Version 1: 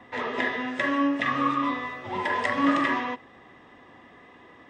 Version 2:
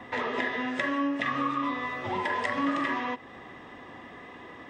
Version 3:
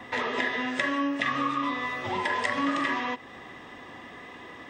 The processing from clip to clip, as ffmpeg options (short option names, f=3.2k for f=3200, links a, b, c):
-af "acompressor=threshold=-36dB:ratio=2.5,volume=5.5dB"
-af "highshelf=f=2.8k:g=8"